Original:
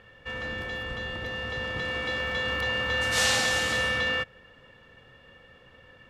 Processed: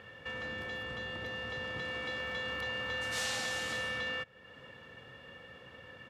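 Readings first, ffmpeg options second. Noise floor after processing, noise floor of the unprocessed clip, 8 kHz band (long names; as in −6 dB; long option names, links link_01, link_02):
−55 dBFS, −55 dBFS, −11.0 dB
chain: -af "highpass=88,acompressor=threshold=-46dB:ratio=2,aresample=32000,aresample=44100,asoftclip=type=hard:threshold=-28.5dB,volume=2dB"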